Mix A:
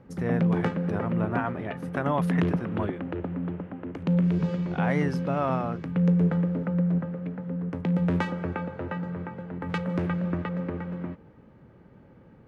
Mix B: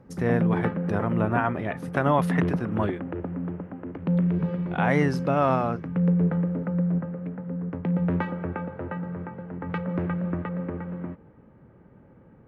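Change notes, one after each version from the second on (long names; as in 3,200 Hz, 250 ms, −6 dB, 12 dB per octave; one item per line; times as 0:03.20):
speech +5.0 dB
background: add low-pass filter 2,100 Hz 12 dB per octave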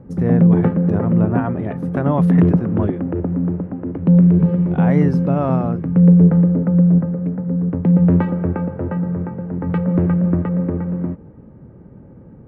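background +5.5 dB
master: add tilt shelving filter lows +7.5 dB, about 760 Hz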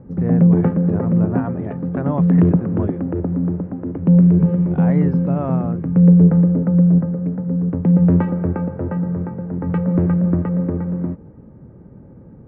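speech −3.5 dB
master: add high-frequency loss of the air 290 metres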